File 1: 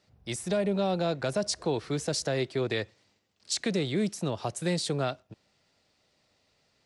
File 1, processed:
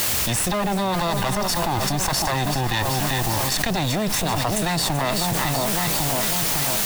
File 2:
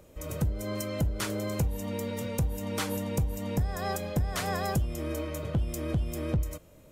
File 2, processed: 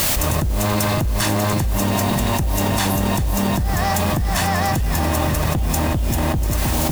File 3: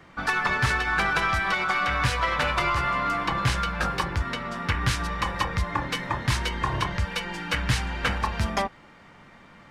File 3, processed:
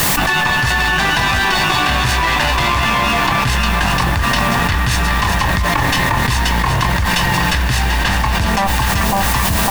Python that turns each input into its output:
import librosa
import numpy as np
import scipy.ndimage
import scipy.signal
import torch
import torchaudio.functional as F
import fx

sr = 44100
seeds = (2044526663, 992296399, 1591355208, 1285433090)

y = fx.lower_of_two(x, sr, delay_ms=1.1)
y = fx.dmg_noise_colour(y, sr, seeds[0], colour='white', level_db=-50.0)
y = fx.echo_split(y, sr, split_hz=1100.0, low_ms=552, high_ms=385, feedback_pct=52, wet_db=-10.5)
y = fx.env_flatten(y, sr, amount_pct=100)
y = y * librosa.db_to_amplitude(5.0)